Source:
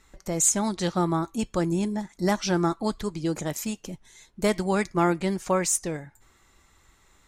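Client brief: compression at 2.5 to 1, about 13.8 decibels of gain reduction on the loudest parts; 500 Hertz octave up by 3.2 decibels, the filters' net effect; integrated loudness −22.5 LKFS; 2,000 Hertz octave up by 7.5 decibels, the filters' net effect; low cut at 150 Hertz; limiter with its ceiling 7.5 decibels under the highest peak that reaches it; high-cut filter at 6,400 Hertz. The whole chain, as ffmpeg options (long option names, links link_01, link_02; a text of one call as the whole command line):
ffmpeg -i in.wav -af "highpass=150,lowpass=6400,equalizer=frequency=500:width_type=o:gain=4,equalizer=frequency=2000:width_type=o:gain=9,acompressor=threshold=-37dB:ratio=2.5,volume=16.5dB,alimiter=limit=-11dB:level=0:latency=1" out.wav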